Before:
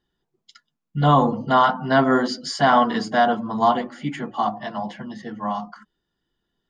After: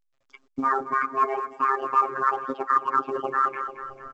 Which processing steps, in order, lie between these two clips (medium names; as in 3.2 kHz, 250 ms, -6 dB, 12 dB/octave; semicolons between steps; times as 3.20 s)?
recorder AGC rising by 31 dB/s; reverb removal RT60 1.7 s; wide varispeed 1.62×; robot voice 134 Hz; feedback delay 222 ms, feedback 52%, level -15.5 dB; gate -49 dBFS, range -28 dB; reverse; compression 4:1, threshold -30 dBFS, peak gain reduction 13.5 dB; reverse; resonant low-pass 1.2 kHz, resonance Q 4.1; trim +2 dB; A-law 128 kbps 16 kHz